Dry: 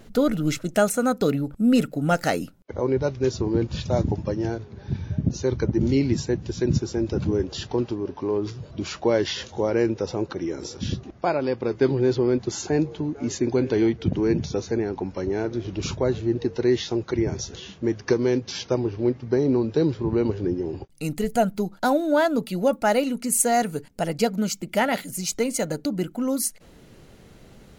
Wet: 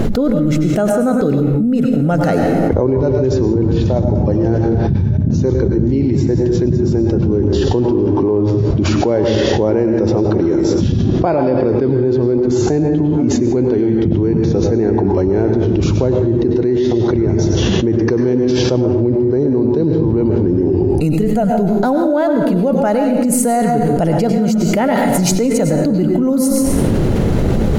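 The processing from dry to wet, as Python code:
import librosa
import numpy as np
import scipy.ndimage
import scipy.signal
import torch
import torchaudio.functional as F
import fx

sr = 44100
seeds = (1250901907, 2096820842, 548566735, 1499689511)

y = fx.tilt_shelf(x, sr, db=7.5, hz=1100.0)
y = fx.rev_plate(y, sr, seeds[0], rt60_s=0.77, hf_ratio=0.75, predelay_ms=85, drr_db=5.0)
y = fx.env_flatten(y, sr, amount_pct=100)
y = y * 10.0 ** (-5.5 / 20.0)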